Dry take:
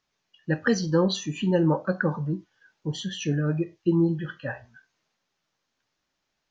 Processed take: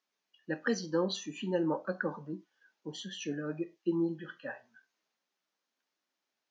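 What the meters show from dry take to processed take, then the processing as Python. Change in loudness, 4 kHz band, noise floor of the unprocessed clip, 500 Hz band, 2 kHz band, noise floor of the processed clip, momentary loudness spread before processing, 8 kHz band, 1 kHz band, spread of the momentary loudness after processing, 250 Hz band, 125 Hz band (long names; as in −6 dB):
−9.0 dB, −7.5 dB, −80 dBFS, −7.5 dB, −7.5 dB, below −85 dBFS, 13 LU, can't be measured, −7.5 dB, 13 LU, −9.5 dB, −17.0 dB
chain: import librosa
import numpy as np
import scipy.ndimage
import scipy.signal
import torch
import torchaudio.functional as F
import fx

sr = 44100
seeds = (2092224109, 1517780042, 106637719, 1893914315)

y = scipy.signal.sosfilt(scipy.signal.butter(4, 210.0, 'highpass', fs=sr, output='sos'), x)
y = y * 10.0 ** (-7.5 / 20.0)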